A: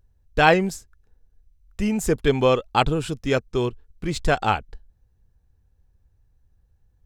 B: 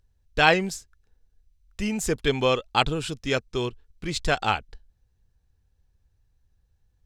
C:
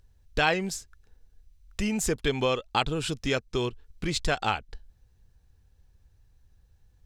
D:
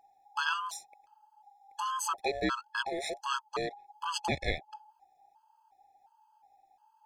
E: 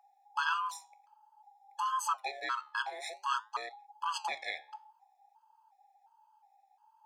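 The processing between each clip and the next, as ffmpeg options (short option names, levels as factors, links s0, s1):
-af "equalizer=f=4200:t=o:w=2.6:g=8,volume=0.562"
-af "acompressor=threshold=0.0158:ratio=2,volume=2"
-af "aeval=exprs='val(0)*sin(2*PI*830*n/s)':c=same,afftfilt=real='re*gt(sin(2*PI*1.4*pts/sr)*(1-2*mod(floor(b*sr/1024/850),2)),0)':imag='im*gt(sin(2*PI*1.4*pts/sr)*(1-2*mod(floor(b*sr/1024/850),2)),0)':win_size=1024:overlap=0.75"
-af "flanger=delay=8.1:depth=6:regen=-80:speed=0.54:shape=sinusoidal,highpass=f=980:t=q:w=2.1"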